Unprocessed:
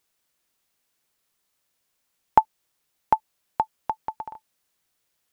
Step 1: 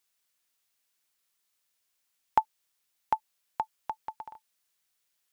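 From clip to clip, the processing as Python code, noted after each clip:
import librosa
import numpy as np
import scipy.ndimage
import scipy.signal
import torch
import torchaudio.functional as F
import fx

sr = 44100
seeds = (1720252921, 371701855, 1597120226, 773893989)

y = fx.tilt_shelf(x, sr, db=-5.0, hz=970.0)
y = F.gain(torch.from_numpy(y), -7.0).numpy()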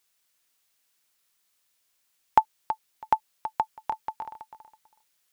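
y = fx.echo_feedback(x, sr, ms=326, feedback_pct=18, wet_db=-11.0)
y = F.gain(torch.from_numpy(y), 5.0).numpy()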